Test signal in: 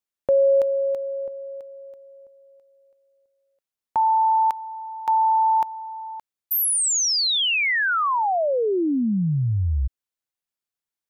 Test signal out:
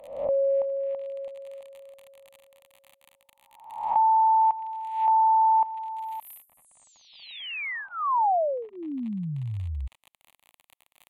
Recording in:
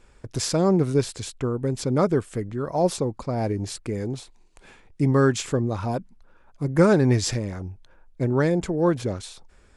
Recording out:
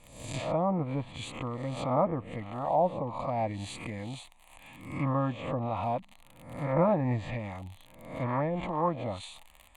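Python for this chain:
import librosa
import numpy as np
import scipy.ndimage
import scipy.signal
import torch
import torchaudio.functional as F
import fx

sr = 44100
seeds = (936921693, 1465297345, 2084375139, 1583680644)

y = fx.spec_swells(x, sr, rise_s=0.67)
y = fx.dmg_crackle(y, sr, seeds[0], per_s=48.0, level_db=-31.0)
y = fx.bass_treble(y, sr, bass_db=-9, treble_db=0)
y = fx.env_lowpass_down(y, sr, base_hz=1200.0, full_db=-19.0)
y = fx.fixed_phaser(y, sr, hz=1500.0, stages=6)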